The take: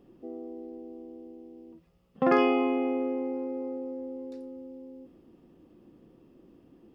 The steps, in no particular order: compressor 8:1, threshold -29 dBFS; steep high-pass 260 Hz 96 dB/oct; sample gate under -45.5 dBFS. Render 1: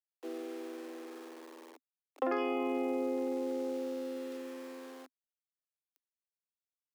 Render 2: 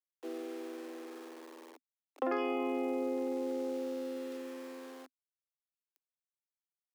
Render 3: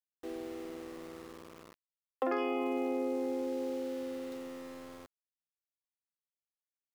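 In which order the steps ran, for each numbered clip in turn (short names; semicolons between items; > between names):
sample gate > steep high-pass > compressor; sample gate > compressor > steep high-pass; steep high-pass > sample gate > compressor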